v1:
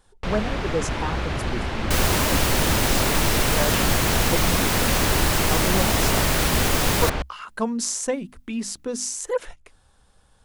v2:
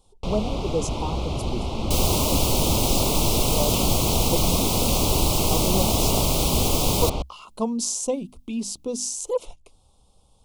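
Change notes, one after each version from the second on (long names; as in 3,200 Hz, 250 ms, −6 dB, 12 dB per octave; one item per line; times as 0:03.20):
master: add Butterworth band-reject 1,700 Hz, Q 0.96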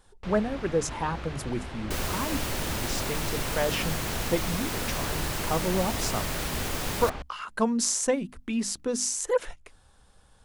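first sound −11.5 dB
second sound −10.0 dB
master: remove Butterworth band-reject 1,700 Hz, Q 0.96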